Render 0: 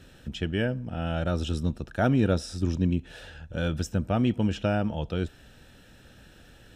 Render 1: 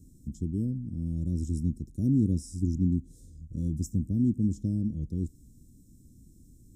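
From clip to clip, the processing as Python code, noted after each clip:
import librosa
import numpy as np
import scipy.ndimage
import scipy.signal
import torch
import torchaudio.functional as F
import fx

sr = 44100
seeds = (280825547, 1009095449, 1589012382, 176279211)

y = scipy.signal.sosfilt(scipy.signal.ellip(3, 1.0, 50, [290.0, 7000.0], 'bandstop', fs=sr, output='sos'), x)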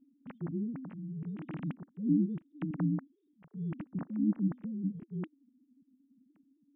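y = fx.sine_speech(x, sr)
y = y * librosa.db_to_amplitude(-6.0)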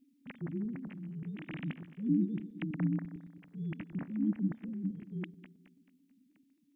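y = fx.reverse_delay_fb(x, sr, ms=109, feedback_pct=61, wet_db=-13.5)
y = fx.high_shelf_res(y, sr, hz=1600.0, db=9.0, q=1.5)
y = y * librosa.db_to_amplitude(-1.5)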